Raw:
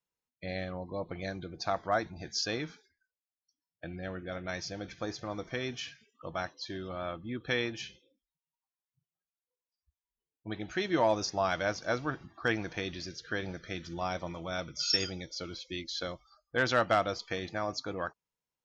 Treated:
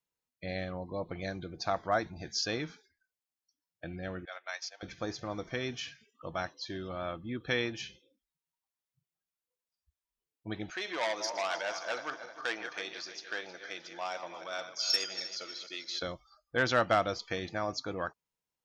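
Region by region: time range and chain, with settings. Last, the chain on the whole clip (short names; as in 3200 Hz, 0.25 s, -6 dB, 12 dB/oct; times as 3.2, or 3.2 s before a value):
4.25–4.83 HPF 750 Hz 24 dB/oct + transient shaper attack 0 dB, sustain -9 dB
10.7–16.02 regenerating reverse delay 0.156 s, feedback 63%, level -11 dB + HPF 580 Hz + core saturation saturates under 3000 Hz
whole clip: dry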